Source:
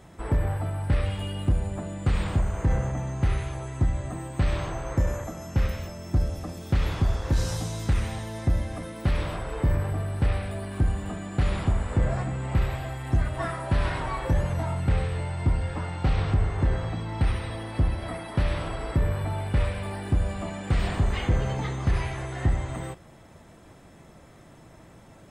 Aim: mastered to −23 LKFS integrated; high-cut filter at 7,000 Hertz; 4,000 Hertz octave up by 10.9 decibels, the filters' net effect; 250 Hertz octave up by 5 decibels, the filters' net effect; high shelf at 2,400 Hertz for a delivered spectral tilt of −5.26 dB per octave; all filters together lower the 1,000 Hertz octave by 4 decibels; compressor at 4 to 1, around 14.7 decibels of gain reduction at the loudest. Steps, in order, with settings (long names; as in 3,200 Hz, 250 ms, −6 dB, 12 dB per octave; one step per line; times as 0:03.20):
low-pass filter 7,000 Hz
parametric band 250 Hz +7.5 dB
parametric band 1,000 Hz −8 dB
high-shelf EQ 2,400 Hz +9 dB
parametric band 4,000 Hz +7 dB
downward compressor 4 to 1, threshold −35 dBFS
level +15 dB